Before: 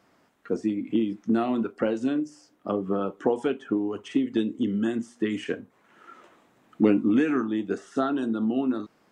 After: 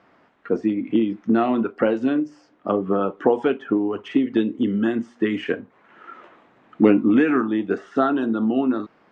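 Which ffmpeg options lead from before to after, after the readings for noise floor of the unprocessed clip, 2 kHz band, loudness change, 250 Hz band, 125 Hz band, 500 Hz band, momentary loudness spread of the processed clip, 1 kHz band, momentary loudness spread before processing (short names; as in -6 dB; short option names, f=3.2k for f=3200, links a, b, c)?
-64 dBFS, +7.0 dB, +5.0 dB, +5.0 dB, +4.0 dB, +6.0 dB, 8 LU, +7.0 dB, 8 LU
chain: -af "lowpass=2.7k,lowshelf=f=360:g=-5,volume=8dB"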